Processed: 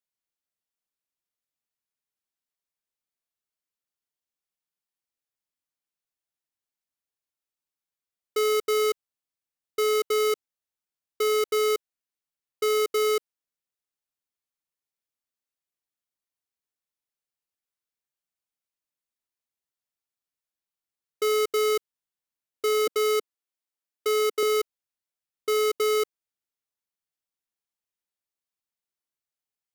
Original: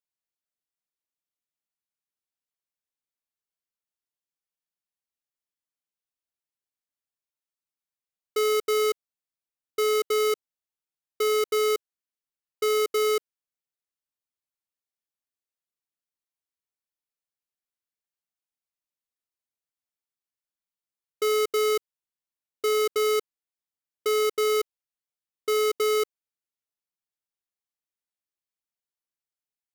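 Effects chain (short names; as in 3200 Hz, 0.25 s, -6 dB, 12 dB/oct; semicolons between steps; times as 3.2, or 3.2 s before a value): 22.87–24.43 HPF 260 Hz 24 dB/oct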